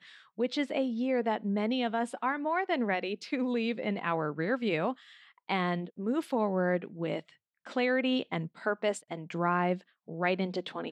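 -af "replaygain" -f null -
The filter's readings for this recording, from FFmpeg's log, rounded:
track_gain = +12.3 dB
track_peak = 0.129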